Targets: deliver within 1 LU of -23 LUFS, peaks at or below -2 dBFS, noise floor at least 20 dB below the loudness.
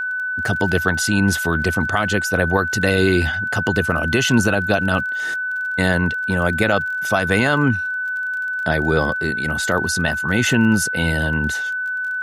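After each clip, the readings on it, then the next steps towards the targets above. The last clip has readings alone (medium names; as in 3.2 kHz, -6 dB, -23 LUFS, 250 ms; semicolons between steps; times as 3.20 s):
tick rate 25 per s; steady tone 1.5 kHz; tone level -21 dBFS; loudness -19.0 LUFS; peak level -4.0 dBFS; loudness target -23.0 LUFS
-> de-click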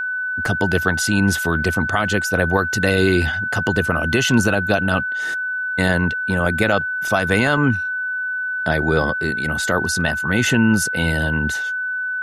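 tick rate 0 per s; steady tone 1.5 kHz; tone level -21 dBFS
-> band-stop 1.5 kHz, Q 30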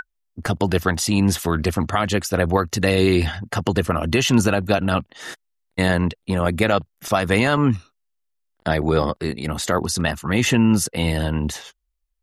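steady tone not found; loudness -20.5 LUFS; peak level -5.0 dBFS; loudness target -23.0 LUFS
-> trim -2.5 dB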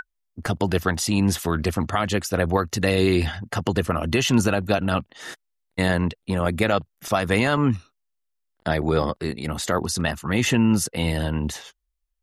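loudness -23.0 LUFS; peak level -7.5 dBFS; noise floor -76 dBFS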